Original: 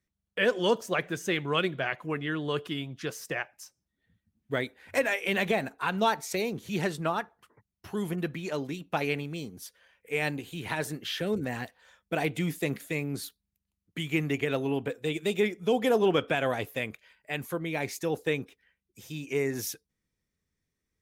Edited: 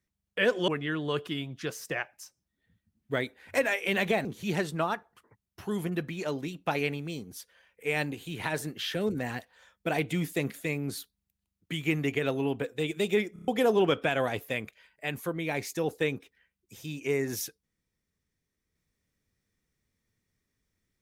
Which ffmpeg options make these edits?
-filter_complex "[0:a]asplit=8[s0][s1][s2][s3][s4][s5][s6][s7];[s0]atrim=end=0.682[s8];[s1]atrim=start=2.078:end=5.652[s9];[s2]atrim=start=6.508:end=15.622[s10];[s3]atrim=start=15.588:end=15.622[s11];[s4]atrim=start=15.588:end=15.622[s12];[s5]atrim=start=15.588:end=15.622[s13];[s6]atrim=start=15.588:end=15.622[s14];[s7]atrim=start=15.738[s15];[s8][s9]acrossfade=d=0.004:c1=hsin:c2=hsin[s16];[s16][s10]acrossfade=d=0.004:c1=hsin:c2=hsin[s17];[s17][s11]acrossfade=d=0.004:c1=hsin:c2=hsin[s18];[s18][s12]acrossfade=d=0.004:c1=hsin:c2=hsin[s19];[s19][s13]acrossfade=d=0.004:c1=hsin:c2=hsin[s20];[s20][s14]acrossfade=d=0.004:c1=hsin:c2=hsin[s21];[s21][s15]acrossfade=d=0.004:c1=hsin:c2=hsin"

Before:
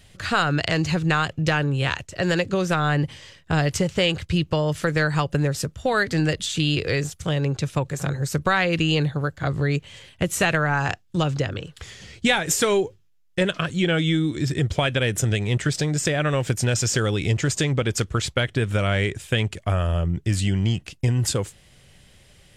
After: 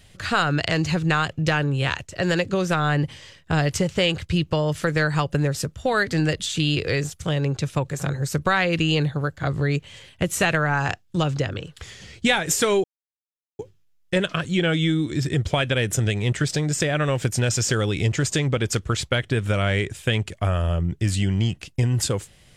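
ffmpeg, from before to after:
-filter_complex "[0:a]asplit=2[s0][s1];[s0]atrim=end=12.84,asetpts=PTS-STARTPTS,afade=t=out:st=12.836:d=0.004:c=hsin,apad=pad_dur=0.75[s2];[s1]atrim=start=12.84,asetpts=PTS-STARTPTS,afade=t=in:d=0.004:c=hsin[s3];[s2][s3]concat=n=2:v=0:a=1"

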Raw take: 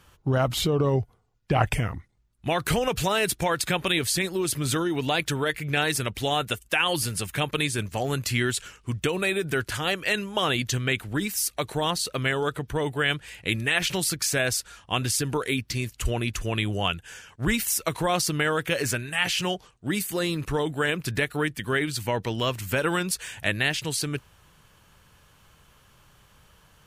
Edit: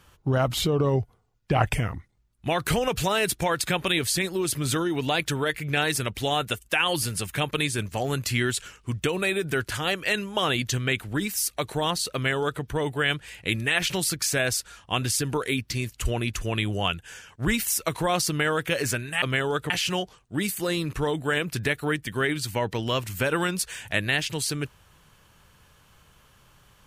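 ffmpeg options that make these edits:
-filter_complex "[0:a]asplit=3[s0][s1][s2];[s0]atrim=end=19.222[s3];[s1]atrim=start=12.138:end=12.622[s4];[s2]atrim=start=19.218[s5];[s3][s4]acrossfade=d=0.004:c1=hsin:c2=hsin[s6];[s6][s5]acrossfade=d=0.004:c1=hsin:c2=hsin"

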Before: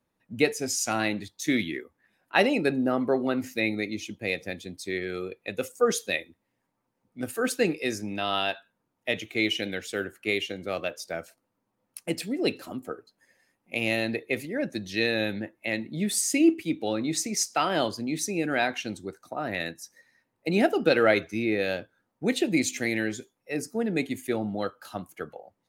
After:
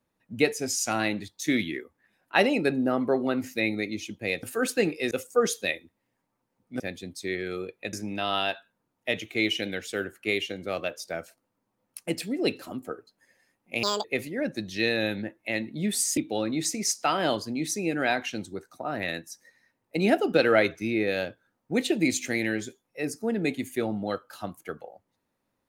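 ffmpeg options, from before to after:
-filter_complex "[0:a]asplit=8[s0][s1][s2][s3][s4][s5][s6][s7];[s0]atrim=end=4.432[s8];[s1]atrim=start=7.248:end=7.932[s9];[s2]atrim=start=5.558:end=7.252[s10];[s3]atrim=start=4.428:end=5.562[s11];[s4]atrim=start=7.928:end=13.834[s12];[s5]atrim=start=13.83:end=14.22,asetpts=PTS-STARTPTS,asetrate=80703,aresample=44100,atrim=end_sample=9398,asetpts=PTS-STARTPTS[s13];[s6]atrim=start=14.216:end=16.352[s14];[s7]atrim=start=16.688[s15];[s8][s9]acrossfade=d=0.004:c1=hsin:c2=hsin[s16];[s16][s10]acrossfade=d=0.004:c1=hsin:c2=hsin[s17];[s17][s11]acrossfade=d=0.004:c1=hsin:c2=hsin[s18];[s18][s12]acrossfade=d=0.004:c1=hsin:c2=hsin[s19];[s19][s13]acrossfade=d=0.004:c1=hsin:c2=hsin[s20];[s20][s14]acrossfade=d=0.004:c1=hsin:c2=hsin[s21];[s21][s15]acrossfade=d=0.004:c1=hsin:c2=hsin"

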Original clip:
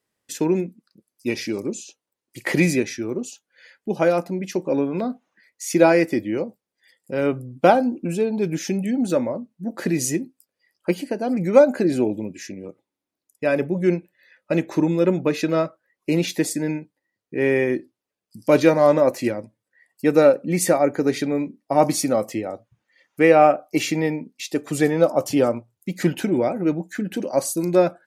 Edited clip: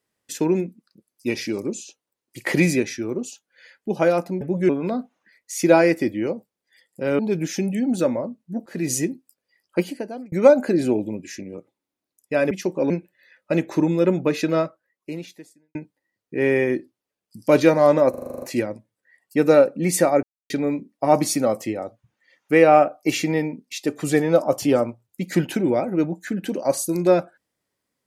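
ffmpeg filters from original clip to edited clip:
-filter_complex "[0:a]asplit=19[s0][s1][s2][s3][s4][s5][s6][s7][s8][s9][s10][s11][s12][s13][s14][s15][s16][s17][s18];[s0]atrim=end=4.412[s19];[s1]atrim=start=13.618:end=13.902[s20];[s2]atrim=start=4.798:end=7.302[s21];[s3]atrim=start=8.298:end=9.77,asetpts=PTS-STARTPTS,afade=t=out:st=1.468:d=0.004:c=hsin:silence=0.0668344[s22];[s4]atrim=start=9.77:end=11.43,asetpts=PTS-STARTPTS,afade=t=in:d=0.25:silence=0.0668344,afade=t=out:st=1.17:d=0.49[s23];[s5]atrim=start=11.43:end=13.622,asetpts=PTS-STARTPTS,afade=t=in:d=0.004:c=hsin[s24];[s6]atrim=start=4.408:end=4.802[s25];[s7]atrim=start=13.898:end=16.75,asetpts=PTS-STARTPTS,afade=t=out:st=1.682:d=1.17:c=qua[s26];[s8]atrim=start=16.75:end=19.142,asetpts=PTS-STARTPTS,afade=t=in:d=0.004:c=hsin[s27];[s9]atrim=start=19.098:end=19.142[s28];[s10]atrim=start=19.098:end=19.142[s29];[s11]atrim=start=19.098:end=19.142[s30];[s12]atrim=start=19.098:end=19.142[s31];[s13]atrim=start=19.098:end=19.142[s32];[s14]atrim=start=19.098:end=19.142[s33];[s15]atrim=start=19.098:end=19.142[s34];[s16]atrim=start=19.098:end=20.91,asetpts=PTS-STARTPTS,afade=t=out:st=1.808:d=0.004:c=hsin[s35];[s17]atrim=start=20.91:end=21.18,asetpts=PTS-STARTPTS,volume=0[s36];[s18]atrim=start=21.18,asetpts=PTS-STARTPTS,afade=t=in:d=0.004:c=hsin[s37];[s19][s20]acrossfade=d=0.004:c1=hsin:c2=hsin[s38];[s38][s21]acrossfade=d=0.004:c1=hsin:c2=hsin[s39];[s22][s23][s24]concat=n=3:v=0:a=1[s40];[s39][s40]acrossfade=d=0.004:c1=hsin:c2=hsin[s41];[s41][s25]acrossfade=d=0.004:c1=hsin:c2=hsin[s42];[s26][s27]concat=n=2:v=0:a=1[s43];[s42][s43]acrossfade=d=0.004:c1=hsin:c2=hsin[s44];[s44][s28]acrossfade=d=0.004:c1=hsin:c2=hsin[s45];[s45][s29]acrossfade=d=0.004:c1=hsin:c2=hsin[s46];[s46][s30]acrossfade=d=0.004:c1=hsin:c2=hsin[s47];[s47][s31]acrossfade=d=0.004:c1=hsin:c2=hsin[s48];[s48][s32]acrossfade=d=0.004:c1=hsin:c2=hsin[s49];[s49][s33]acrossfade=d=0.004:c1=hsin:c2=hsin[s50];[s50][s34]acrossfade=d=0.004:c1=hsin:c2=hsin[s51];[s35][s36][s37]concat=n=3:v=0:a=1[s52];[s51][s52]acrossfade=d=0.004:c1=hsin:c2=hsin"

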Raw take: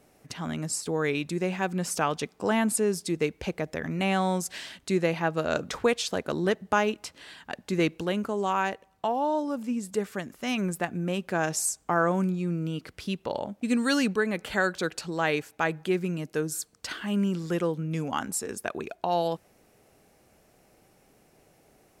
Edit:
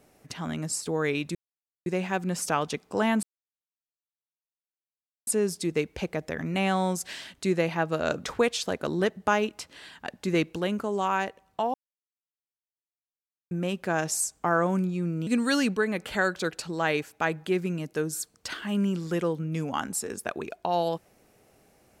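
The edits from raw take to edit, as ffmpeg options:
-filter_complex "[0:a]asplit=6[s0][s1][s2][s3][s4][s5];[s0]atrim=end=1.35,asetpts=PTS-STARTPTS,afade=t=out:st=1.346:d=0.004:c=hsin,apad=pad_dur=0.51[s6];[s1]atrim=start=1.35:end=2.72,asetpts=PTS-STARTPTS,afade=t=in:d=0.004:c=hsin,afade=t=out:st=1.366:d=0.004:c=hsin,apad=pad_dur=2.04[s7];[s2]atrim=start=2.72:end=9.19,asetpts=PTS-STARTPTS,afade=t=in:d=0.004:c=hsin,afade=t=out:st=6.466:d=0.004:c=hsin[s8];[s3]atrim=start=9.19:end=10.96,asetpts=PTS-STARTPTS,volume=0[s9];[s4]atrim=start=10.96:end=12.722,asetpts=PTS-STARTPTS,afade=t=in:d=0.004:c=hsin[s10];[s5]atrim=start=13.658[s11];[s6][s7][s8][s9][s10]concat=n=5:v=0:a=1[s12];[s12][s11]acrossfade=d=0.004:c1=hsin:c2=hsin"

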